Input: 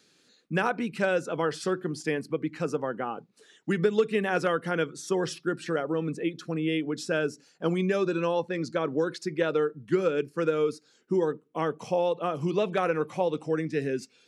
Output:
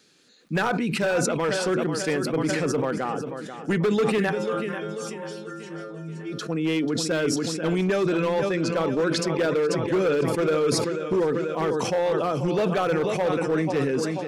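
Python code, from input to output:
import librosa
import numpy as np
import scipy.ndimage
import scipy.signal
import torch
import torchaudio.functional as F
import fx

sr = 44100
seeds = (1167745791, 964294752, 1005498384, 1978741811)

y = fx.stiff_resonator(x, sr, f0_hz=79.0, decay_s=0.81, stiffness=0.008, at=(4.29, 6.31), fade=0.02)
y = fx.echo_feedback(y, sr, ms=489, feedback_pct=49, wet_db=-11.0)
y = np.clip(10.0 ** (22.0 / 20.0) * y, -1.0, 1.0) / 10.0 ** (22.0 / 20.0)
y = fx.sustainer(y, sr, db_per_s=24.0)
y = y * librosa.db_to_amplitude(3.5)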